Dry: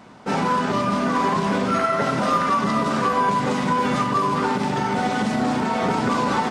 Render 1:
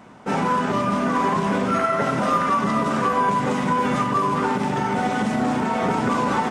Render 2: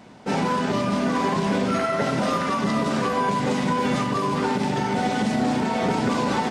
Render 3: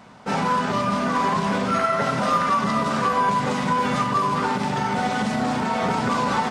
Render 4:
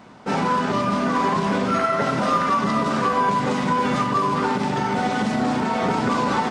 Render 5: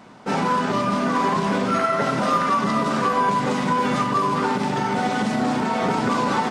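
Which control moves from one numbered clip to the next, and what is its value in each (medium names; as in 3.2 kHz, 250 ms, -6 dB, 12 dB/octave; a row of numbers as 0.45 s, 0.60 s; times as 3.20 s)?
peaking EQ, frequency: 4.4 kHz, 1.2 kHz, 330 Hz, 13 kHz, 75 Hz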